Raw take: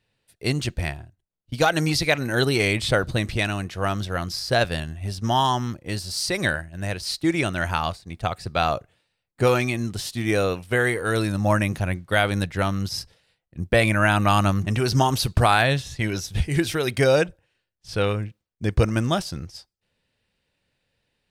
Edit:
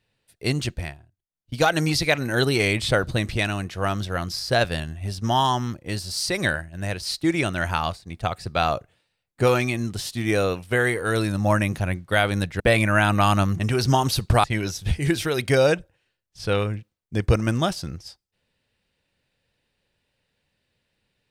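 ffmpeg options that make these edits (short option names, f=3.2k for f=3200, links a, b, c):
-filter_complex "[0:a]asplit=5[a][b][c][d][e];[a]atrim=end=0.99,asetpts=PTS-STARTPTS,afade=t=out:st=0.65:d=0.34:silence=0.266073[f];[b]atrim=start=0.99:end=1.24,asetpts=PTS-STARTPTS,volume=-11.5dB[g];[c]atrim=start=1.24:end=12.602,asetpts=PTS-STARTPTS,afade=t=in:d=0.34:silence=0.266073[h];[d]atrim=start=13.668:end=15.512[i];[e]atrim=start=15.928[j];[f][g][h]concat=n=3:v=0:a=1[k];[k][i]acrossfade=d=0.004:c1=hsin:c2=hsin[l];[l][j]acrossfade=d=0.004:c1=hsin:c2=hsin"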